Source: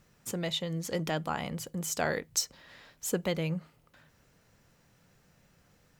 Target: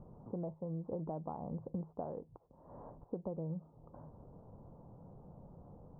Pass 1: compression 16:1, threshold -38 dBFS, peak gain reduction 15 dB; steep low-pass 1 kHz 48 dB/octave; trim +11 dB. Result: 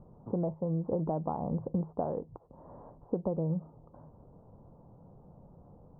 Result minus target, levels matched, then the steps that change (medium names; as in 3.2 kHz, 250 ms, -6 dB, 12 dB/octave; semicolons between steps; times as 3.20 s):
compression: peak gain reduction -9 dB
change: compression 16:1, threshold -47.5 dBFS, peak gain reduction 24 dB